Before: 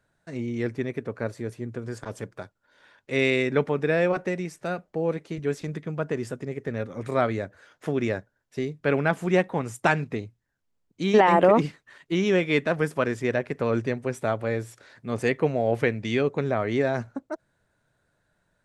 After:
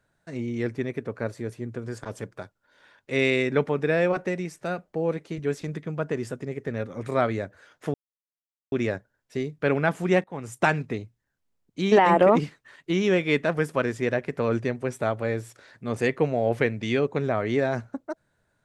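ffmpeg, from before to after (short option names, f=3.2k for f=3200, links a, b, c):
-filter_complex "[0:a]asplit=3[a][b][c];[a]atrim=end=7.94,asetpts=PTS-STARTPTS,afade=t=out:st=7.936:d=0.004:c=hsin,apad=pad_dur=0.78[d];[b]atrim=start=7.94:end=9.46,asetpts=PTS-STARTPTS,afade=t=in:d=0.004:c=hsin,afade=t=out:st=1.516:d=0.004:c=hsin:silence=0.0841395[e];[c]atrim=start=9.46,asetpts=PTS-STARTPTS,afade=t=in:d=0.33:silence=0.0841395[f];[d][e][f]concat=n=3:v=0:a=1"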